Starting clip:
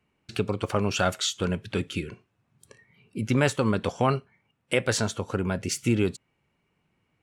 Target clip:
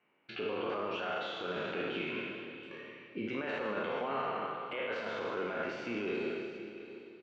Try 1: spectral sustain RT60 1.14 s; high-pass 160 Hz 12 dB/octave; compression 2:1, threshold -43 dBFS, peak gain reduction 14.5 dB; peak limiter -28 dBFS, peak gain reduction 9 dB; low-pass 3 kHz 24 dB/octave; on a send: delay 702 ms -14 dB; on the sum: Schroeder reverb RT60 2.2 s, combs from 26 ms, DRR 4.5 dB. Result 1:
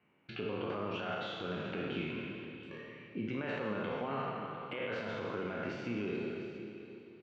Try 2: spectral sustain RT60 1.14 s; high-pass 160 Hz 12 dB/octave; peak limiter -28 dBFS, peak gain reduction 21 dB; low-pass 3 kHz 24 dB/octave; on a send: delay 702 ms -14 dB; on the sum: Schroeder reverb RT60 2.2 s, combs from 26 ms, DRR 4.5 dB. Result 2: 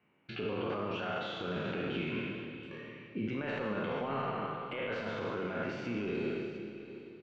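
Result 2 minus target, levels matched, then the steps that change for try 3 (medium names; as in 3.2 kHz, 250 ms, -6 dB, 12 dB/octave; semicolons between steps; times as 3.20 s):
125 Hz band +9.0 dB
change: high-pass 350 Hz 12 dB/octave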